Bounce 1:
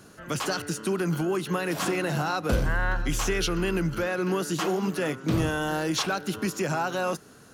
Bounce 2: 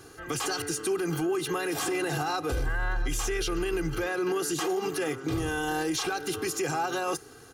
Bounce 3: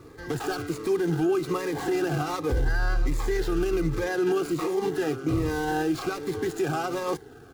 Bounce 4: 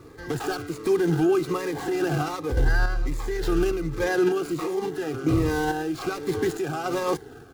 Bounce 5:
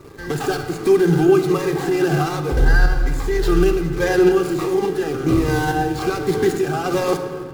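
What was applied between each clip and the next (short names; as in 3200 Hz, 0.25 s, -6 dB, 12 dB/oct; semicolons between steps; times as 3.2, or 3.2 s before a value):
comb 2.5 ms, depth 84%; dynamic EQ 9100 Hz, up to +5 dB, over -44 dBFS, Q 0.85; limiter -21 dBFS, peak gain reduction 11.5 dB
median filter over 15 samples; cascading phaser falling 1.3 Hz; gain +5 dB
random-step tremolo; gain +4 dB
in parallel at -9 dB: bit-crush 7-bit; on the sum: shoebox room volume 3300 m³, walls mixed, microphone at 1.2 m; gain +2.5 dB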